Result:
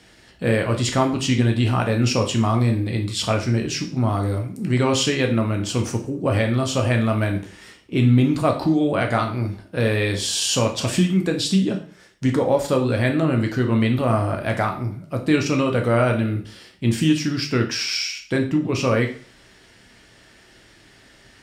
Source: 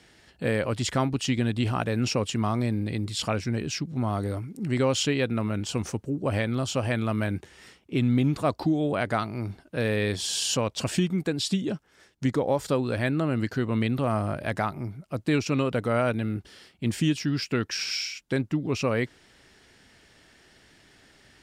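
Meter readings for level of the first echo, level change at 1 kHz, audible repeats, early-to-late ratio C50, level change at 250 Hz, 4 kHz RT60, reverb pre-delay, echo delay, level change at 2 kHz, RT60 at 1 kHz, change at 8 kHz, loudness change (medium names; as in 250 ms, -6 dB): no echo, +6.0 dB, no echo, 10.0 dB, +6.0 dB, 0.40 s, 5 ms, no echo, +5.5 dB, 0.45 s, +5.5 dB, +6.5 dB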